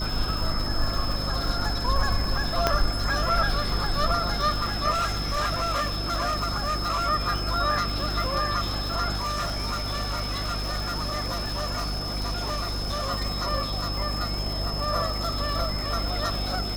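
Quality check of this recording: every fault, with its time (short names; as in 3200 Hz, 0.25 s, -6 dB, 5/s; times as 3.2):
crackle 410/s -31 dBFS
hum 50 Hz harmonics 7 -31 dBFS
tone 5200 Hz -32 dBFS
2.67 pop -6 dBFS
4.9–7.08 clipped -22 dBFS
9.15–13.11 clipped -24.5 dBFS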